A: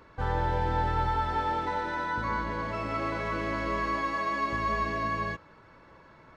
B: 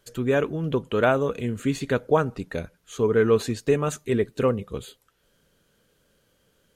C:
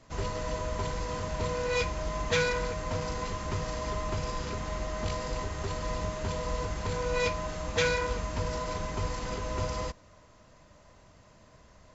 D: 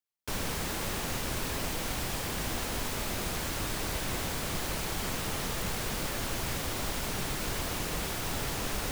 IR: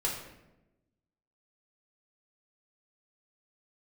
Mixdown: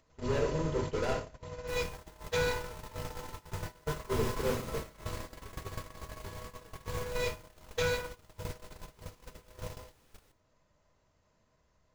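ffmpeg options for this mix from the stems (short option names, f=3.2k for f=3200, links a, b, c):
-filter_complex "[0:a]adelay=1750,volume=-3dB[a];[1:a]lowpass=2.8k,asoftclip=type=hard:threshold=-23dB,volume=-8.5dB,asplit=3[b][c][d];[b]atrim=end=1.14,asetpts=PTS-STARTPTS,afade=t=out:st=1.136:d=0.004:c=hsin[e];[c]atrim=start=1.14:end=3.86,asetpts=PTS-STARTPTS,volume=0[f];[d]atrim=start=3.86,asetpts=PTS-STARTPTS,afade=t=in:d=0.004:c=hsin[g];[e][f][g]concat=n=3:v=0:a=1,asplit=2[h][i];[i]volume=-5dB[j];[2:a]acompressor=mode=upward:threshold=-34dB:ratio=2.5,volume=0.5dB,asplit=2[k][l];[l]volume=-14dB[m];[3:a]adelay=1400,volume=-0.5dB,asplit=2[n][o];[o]volume=-19dB[p];[a][h]amix=inputs=2:normalize=0,aeval=exprs='val(0)+0.00355*(sin(2*PI*60*n/s)+sin(2*PI*2*60*n/s)/2+sin(2*PI*3*60*n/s)/3+sin(2*PI*4*60*n/s)/4+sin(2*PI*5*60*n/s)/5)':c=same,acompressor=threshold=-40dB:ratio=6,volume=0dB[q];[k][n]amix=inputs=2:normalize=0,acompressor=threshold=-38dB:ratio=4,volume=0dB[r];[4:a]atrim=start_sample=2205[s];[j][m][p]amix=inputs=3:normalize=0[t];[t][s]afir=irnorm=-1:irlink=0[u];[q][r][u]amix=inputs=3:normalize=0,agate=range=-28dB:threshold=-31dB:ratio=16:detection=peak"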